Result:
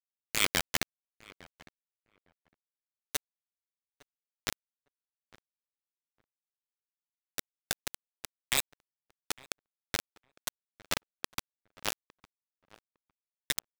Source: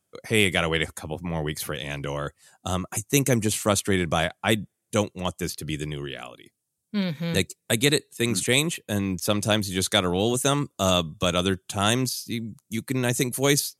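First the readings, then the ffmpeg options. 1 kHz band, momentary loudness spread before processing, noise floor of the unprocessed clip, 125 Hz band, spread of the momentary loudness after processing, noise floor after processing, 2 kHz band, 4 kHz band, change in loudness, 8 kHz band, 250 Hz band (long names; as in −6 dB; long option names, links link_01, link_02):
−15.0 dB, 11 LU, −79 dBFS, −26.0 dB, 17 LU, below −85 dBFS, −11.0 dB, −11.0 dB, −10.0 dB, −11.0 dB, −25.5 dB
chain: -filter_complex "[0:a]afftfilt=real='re*gte(hypot(re,im),0.2)':imag='im*gte(hypot(re,im),0.2)':win_size=1024:overlap=0.75,bandreject=frequency=2600:width=7.5,afftfilt=real='re*lt(hypot(re,im),0.224)':imag='im*lt(hypot(re,im),0.224)':win_size=1024:overlap=0.75,acrusher=bits=3:mix=0:aa=0.000001,asplit=2[link_01][link_02];[link_02]adelay=857,lowpass=frequency=1600:poles=1,volume=-20dB,asplit=2[link_03][link_04];[link_04]adelay=857,lowpass=frequency=1600:poles=1,volume=0.16[link_05];[link_01][link_03][link_05]amix=inputs=3:normalize=0,volume=4.5dB"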